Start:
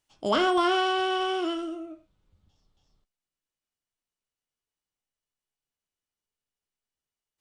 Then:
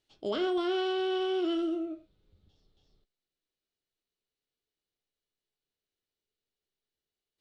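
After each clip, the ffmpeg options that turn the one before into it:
-af "equalizer=f=400:t=o:w=0.67:g=8,equalizer=f=1k:t=o:w=0.67:g=-7,equalizer=f=4k:t=o:w=0.67:g=10,areverse,acompressor=threshold=-27dB:ratio=6,areverse,highshelf=f=4.4k:g=-11"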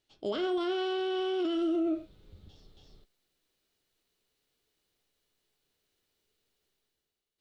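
-af "dynaudnorm=f=190:g=7:m=12dB,alimiter=limit=-24dB:level=0:latency=1:release=32"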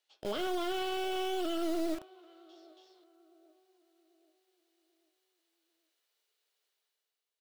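-filter_complex "[0:a]acrossover=split=470[a][b];[a]acrusher=bits=4:dc=4:mix=0:aa=0.000001[c];[b]asplit=2[d][e];[e]adelay=788,lowpass=f=900:p=1,volume=-15dB,asplit=2[f][g];[g]adelay=788,lowpass=f=900:p=1,volume=0.5,asplit=2[h][i];[i]adelay=788,lowpass=f=900:p=1,volume=0.5,asplit=2[j][k];[k]adelay=788,lowpass=f=900:p=1,volume=0.5,asplit=2[l][m];[m]adelay=788,lowpass=f=900:p=1,volume=0.5[n];[d][f][h][j][l][n]amix=inputs=6:normalize=0[o];[c][o]amix=inputs=2:normalize=0,volume=-1dB"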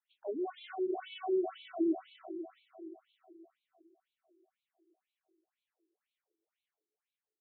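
-af "aemphasis=mode=reproduction:type=riaa,aecho=1:1:320|640|960|1280|1600|1920:0.562|0.276|0.135|0.0662|0.0324|0.0159,afftfilt=real='re*between(b*sr/1024,300*pow(3100/300,0.5+0.5*sin(2*PI*2*pts/sr))/1.41,300*pow(3100/300,0.5+0.5*sin(2*PI*2*pts/sr))*1.41)':imag='im*between(b*sr/1024,300*pow(3100/300,0.5+0.5*sin(2*PI*2*pts/sr))/1.41,300*pow(3100/300,0.5+0.5*sin(2*PI*2*pts/sr))*1.41)':win_size=1024:overlap=0.75,volume=-1.5dB"

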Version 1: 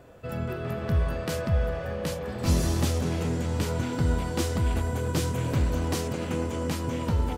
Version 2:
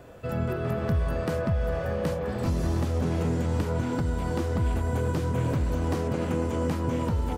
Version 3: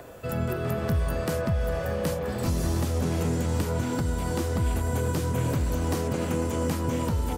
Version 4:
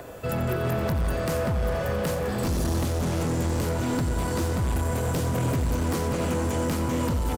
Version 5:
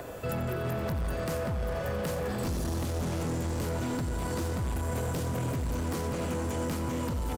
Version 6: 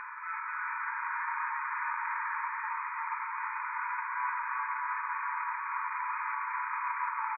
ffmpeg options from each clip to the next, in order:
-filter_complex "[0:a]acrossover=split=1800|4700[a][b][c];[a]acompressor=threshold=-24dB:ratio=4[d];[b]acompressor=threshold=-55dB:ratio=4[e];[c]acompressor=threshold=-55dB:ratio=4[f];[d][e][f]amix=inputs=3:normalize=0,alimiter=limit=-20.5dB:level=0:latency=1:release=217,volume=3.5dB"
-filter_complex "[0:a]crystalizer=i=2:c=0,acrossover=split=300|1800[a][b][c];[b]acompressor=mode=upward:threshold=-41dB:ratio=2.5[d];[a][d][c]amix=inputs=3:normalize=0"
-filter_complex "[0:a]asoftclip=type=hard:threshold=-26dB,asplit=2[a][b];[b]aecho=0:1:88|176|264|352|440|528|616:0.266|0.154|0.0895|0.0519|0.0301|0.0175|0.0101[c];[a][c]amix=inputs=2:normalize=0,volume=3.5dB"
-af "alimiter=level_in=2dB:limit=-24dB:level=0:latency=1,volume=-2dB"
-filter_complex "[0:a]asplit=2[a][b];[b]highpass=f=720:p=1,volume=16dB,asoftclip=type=tanh:threshold=-25.5dB[c];[a][c]amix=inputs=2:normalize=0,lowpass=f=1.8k:p=1,volume=-6dB,asplit=9[d][e][f][g][h][i][j][k][l];[e]adelay=337,afreqshift=140,volume=-3dB[m];[f]adelay=674,afreqshift=280,volume=-8.2dB[n];[g]adelay=1011,afreqshift=420,volume=-13.4dB[o];[h]adelay=1348,afreqshift=560,volume=-18.6dB[p];[i]adelay=1685,afreqshift=700,volume=-23.8dB[q];[j]adelay=2022,afreqshift=840,volume=-29dB[r];[k]adelay=2359,afreqshift=980,volume=-34.2dB[s];[l]adelay=2696,afreqshift=1120,volume=-39.3dB[t];[d][m][n][o][p][q][r][s][t]amix=inputs=9:normalize=0,afftfilt=real='re*between(b*sr/4096,870,2500)':imag='im*between(b*sr/4096,870,2500)':win_size=4096:overlap=0.75,volume=3dB"

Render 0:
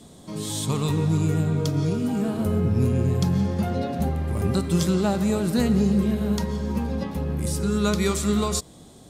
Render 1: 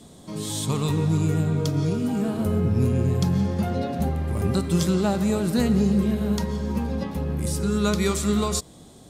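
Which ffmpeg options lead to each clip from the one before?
-af anull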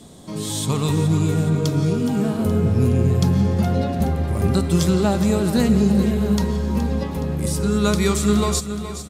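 -af "aecho=1:1:420|840|1260|1680|2100|2520:0.266|0.138|0.0719|0.0374|0.0195|0.0101,volume=3.5dB"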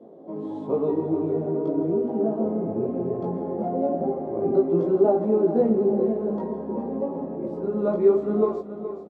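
-filter_complex "[0:a]asplit=2[a][b];[b]adelay=18,volume=-2dB[c];[a][c]amix=inputs=2:normalize=0,flanger=delay=8.1:depth=8.1:regen=-53:speed=0.94:shape=triangular,asuperpass=centerf=460:order=4:qfactor=1.2,volume=6.5dB"

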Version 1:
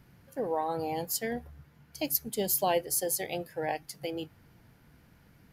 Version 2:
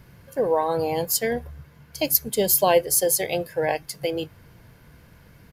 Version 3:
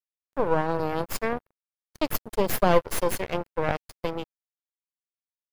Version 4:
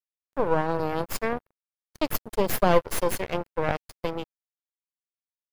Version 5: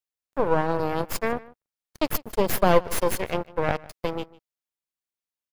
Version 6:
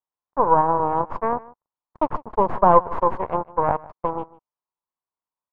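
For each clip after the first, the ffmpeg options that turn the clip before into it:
-af "aecho=1:1:1.9:0.33,volume=8.5dB"
-af "aeval=exprs='0.794*(cos(1*acos(clip(val(0)/0.794,-1,1)))-cos(1*PI/2))+0.112*(cos(8*acos(clip(val(0)/0.794,-1,1)))-cos(8*PI/2))':c=same,aeval=exprs='sgn(val(0))*max(abs(val(0))-0.0266,0)':c=same,highshelf=f=2.8k:g=-11.5,volume=-1.5dB"
-af anull
-filter_complex "[0:a]asplit=2[a][b];[b]adelay=151.6,volume=-21dB,highshelf=f=4k:g=-3.41[c];[a][c]amix=inputs=2:normalize=0,volume=1.5dB"
-af "lowpass=f=1k:t=q:w=4.9,volume=-1dB"

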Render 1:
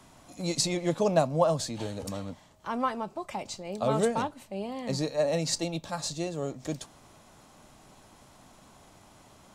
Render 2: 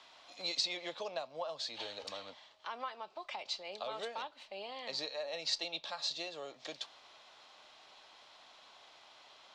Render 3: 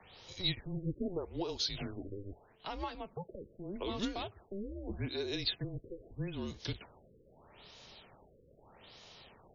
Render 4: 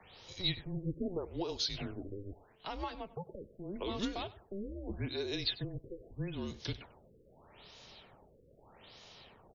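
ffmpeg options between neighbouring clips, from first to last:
-filter_complex "[0:a]acrossover=split=450 5000:gain=0.0631 1 0.0708[a][b][c];[a][b][c]amix=inputs=3:normalize=0,acompressor=threshold=-39dB:ratio=2.5,equalizer=f=3.9k:w=0.86:g=12.5,volume=-4dB"
-af "afreqshift=-190,bass=f=250:g=15,treble=f=4k:g=11,afftfilt=real='re*lt(b*sr/1024,550*pow(7200/550,0.5+0.5*sin(2*PI*0.8*pts/sr)))':imag='im*lt(b*sr/1024,550*pow(7200/550,0.5+0.5*sin(2*PI*0.8*pts/sr)))':win_size=1024:overlap=0.75"
-af "aecho=1:1:97:0.112"

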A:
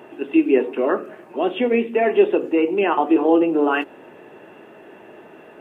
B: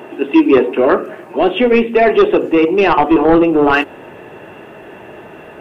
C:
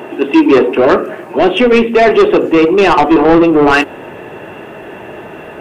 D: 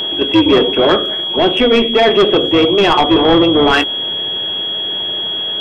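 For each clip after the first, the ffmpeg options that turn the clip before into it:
-af "aeval=exprs='0.631*sin(PI/2*1.78*val(0)/0.631)':c=same,asubboost=boost=4.5:cutoff=120,volume=1dB"
-af "acontrast=74,volume=-1dB"
-af "aeval=exprs='val(0)+0.2*sin(2*PI*3300*n/s)':c=same,tremolo=f=210:d=0.462,volume=-1dB"

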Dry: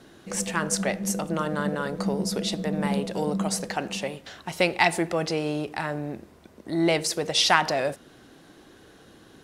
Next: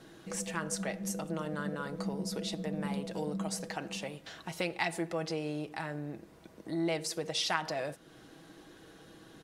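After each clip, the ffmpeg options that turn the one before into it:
-af "aecho=1:1:6.2:0.41,acompressor=threshold=-41dB:ratio=1.5,volume=-3.5dB"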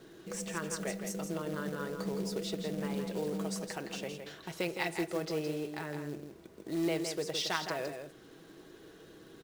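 -af "equalizer=f=400:t=o:w=0.33:g=10,equalizer=f=800:t=o:w=0.33:g=-3,equalizer=f=10k:t=o:w=0.33:g=-4,acrusher=bits=4:mode=log:mix=0:aa=0.000001,aecho=1:1:164:0.447,volume=-2.5dB"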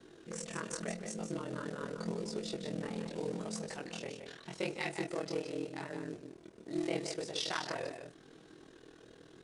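-af "aeval=exprs='val(0)*sin(2*PI*20*n/s)':c=same,flanger=delay=19:depth=7.7:speed=0.83,volume=3dB" -ar 22050 -c:a adpcm_ima_wav

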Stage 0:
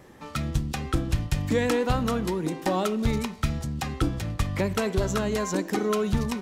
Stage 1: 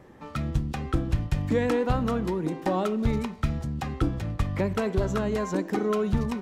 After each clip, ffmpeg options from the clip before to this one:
-af "highshelf=f=2.9k:g=-11"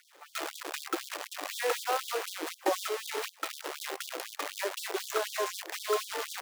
-af "acrusher=bits=6:dc=4:mix=0:aa=0.000001,afftfilt=real='re*gte(b*sr/1024,290*pow(3300/290,0.5+0.5*sin(2*PI*4*pts/sr)))':imag='im*gte(b*sr/1024,290*pow(3300/290,0.5+0.5*sin(2*PI*4*pts/sr)))':win_size=1024:overlap=0.75"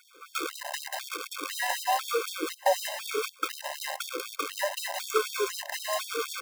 -af "afftfilt=real='re*gt(sin(2*PI*1*pts/sr)*(1-2*mod(floor(b*sr/1024/530),2)),0)':imag='im*gt(sin(2*PI*1*pts/sr)*(1-2*mod(floor(b*sr/1024/530),2)),0)':win_size=1024:overlap=0.75,volume=6.5dB"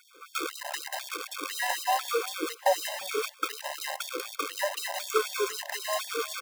-filter_complex "[0:a]asplit=2[a][b];[b]adelay=350,highpass=300,lowpass=3.4k,asoftclip=type=hard:threshold=-19dB,volume=-20dB[c];[a][c]amix=inputs=2:normalize=0"

